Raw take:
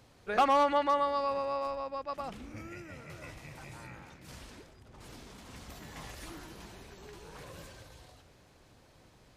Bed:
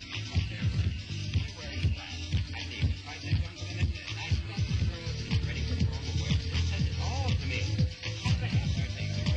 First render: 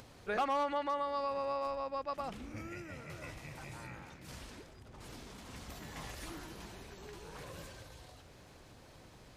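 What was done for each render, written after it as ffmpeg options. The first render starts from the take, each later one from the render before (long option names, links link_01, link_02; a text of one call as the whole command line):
ffmpeg -i in.wav -af "acompressor=mode=upward:threshold=-50dB:ratio=2.5,alimiter=level_in=2.5dB:limit=-24dB:level=0:latency=1:release=369,volume=-2.5dB" out.wav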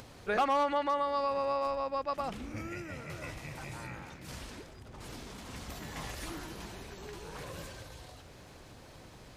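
ffmpeg -i in.wav -af "volume=4.5dB" out.wav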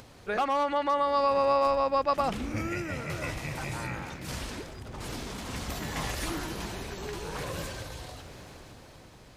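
ffmpeg -i in.wav -af "dynaudnorm=framelen=120:gausssize=17:maxgain=8dB" out.wav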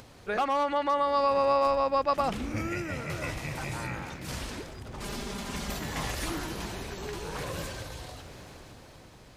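ffmpeg -i in.wav -filter_complex "[0:a]asettb=1/sr,asplit=3[link_01][link_02][link_03];[link_01]atrim=end=5.004[link_04];[link_02]atrim=start=5:end=5.77,asetpts=PTS-STARTPTS,afade=type=in:duration=0.004:curve=qsin,afade=type=out:start_time=0.766:duration=0.004:curve=qsin,aecho=1:1:5:0.65,atrim=end_sample=33957[link_05];[link_03]atrim=start=5.766[link_06];[link_04][link_05]acrossfade=duration=0.004:curve1=hsin:curve2=qsin[link_07];[link_07][link_06]acrossfade=duration=0.004:curve1=qsin:curve2=hsin" out.wav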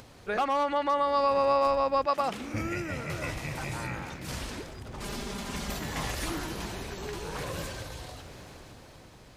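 ffmpeg -i in.wav -filter_complex "[0:a]asettb=1/sr,asplit=3[link_01][link_02][link_03];[link_01]atrim=end=2.064[link_04];[link_02]atrim=start=2.06:end=2.54,asetpts=PTS-STARTPTS,afade=type=in:duration=0.004:curve=qsin,afade=type=out:start_time=0.476:duration=0.004:curve=qsin,highpass=frequency=310:poles=1[link_05];[link_03]atrim=start=2.536[link_06];[link_04][link_05]acrossfade=duration=0.004:curve1=hsin:curve2=qsin[link_07];[link_07][link_06]acrossfade=duration=0.004:curve1=qsin:curve2=hsin" out.wav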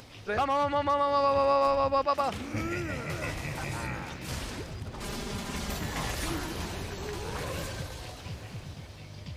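ffmpeg -i in.wav -i bed.wav -filter_complex "[1:a]volume=-13.5dB[link_01];[0:a][link_01]amix=inputs=2:normalize=0" out.wav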